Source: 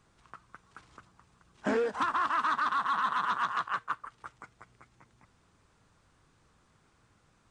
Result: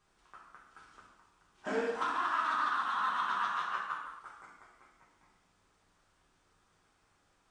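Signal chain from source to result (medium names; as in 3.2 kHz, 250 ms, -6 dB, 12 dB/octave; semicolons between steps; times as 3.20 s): peaking EQ 110 Hz -9 dB 2 oct; gated-style reverb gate 290 ms falling, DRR -4.5 dB; trim -8 dB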